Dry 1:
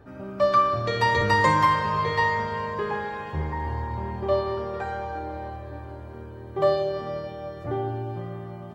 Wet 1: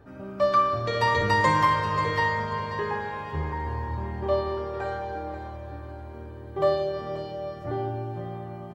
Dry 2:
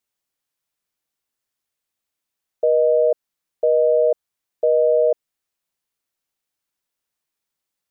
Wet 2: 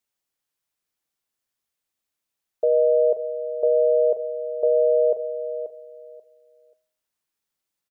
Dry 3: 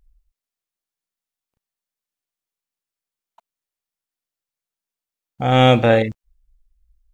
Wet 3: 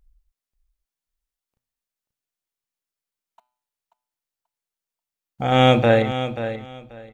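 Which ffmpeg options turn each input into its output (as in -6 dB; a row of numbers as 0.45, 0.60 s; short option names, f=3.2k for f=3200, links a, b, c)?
-filter_complex "[0:a]bandreject=f=124.9:t=h:w=4,bandreject=f=249.8:t=h:w=4,bandreject=f=374.7:t=h:w=4,bandreject=f=499.6:t=h:w=4,bandreject=f=624.5:t=h:w=4,bandreject=f=749.4:t=h:w=4,bandreject=f=874.3:t=h:w=4,bandreject=f=999.2:t=h:w=4,bandreject=f=1.1241k:t=h:w=4,bandreject=f=1.249k:t=h:w=4,bandreject=f=1.3739k:t=h:w=4,bandreject=f=1.4988k:t=h:w=4,bandreject=f=1.6237k:t=h:w=4,bandreject=f=1.7486k:t=h:w=4,bandreject=f=1.8735k:t=h:w=4,bandreject=f=1.9984k:t=h:w=4,bandreject=f=2.1233k:t=h:w=4,bandreject=f=2.2482k:t=h:w=4,bandreject=f=2.3731k:t=h:w=4,bandreject=f=2.498k:t=h:w=4,bandreject=f=2.6229k:t=h:w=4,bandreject=f=2.7478k:t=h:w=4,bandreject=f=2.8727k:t=h:w=4,bandreject=f=2.9976k:t=h:w=4,bandreject=f=3.1225k:t=h:w=4,bandreject=f=3.2474k:t=h:w=4,bandreject=f=3.3723k:t=h:w=4,bandreject=f=3.4972k:t=h:w=4,bandreject=f=3.6221k:t=h:w=4,bandreject=f=3.747k:t=h:w=4,bandreject=f=3.8719k:t=h:w=4,bandreject=f=3.9968k:t=h:w=4,bandreject=f=4.1217k:t=h:w=4,bandreject=f=4.2466k:t=h:w=4,bandreject=f=4.3715k:t=h:w=4,bandreject=f=4.4964k:t=h:w=4,bandreject=f=4.6213k:t=h:w=4,bandreject=f=4.7462k:t=h:w=4,bandreject=f=4.8711k:t=h:w=4,asplit=2[a][b];[b]aecho=0:1:535|1070|1605:0.282|0.0564|0.0113[c];[a][c]amix=inputs=2:normalize=0,volume=-1.5dB"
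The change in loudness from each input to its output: -1.5, -2.5, -3.0 LU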